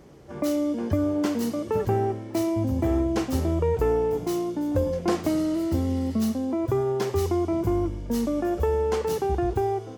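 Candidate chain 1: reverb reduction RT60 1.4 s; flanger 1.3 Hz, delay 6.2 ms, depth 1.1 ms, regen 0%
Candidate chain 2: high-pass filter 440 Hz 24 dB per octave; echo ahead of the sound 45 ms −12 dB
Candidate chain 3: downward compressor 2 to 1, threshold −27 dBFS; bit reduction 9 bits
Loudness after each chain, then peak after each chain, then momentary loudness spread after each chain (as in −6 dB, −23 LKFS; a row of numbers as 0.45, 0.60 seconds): −31.0, −31.0, −29.0 LKFS; −15.5, −16.0, −15.5 dBFS; 6, 9, 2 LU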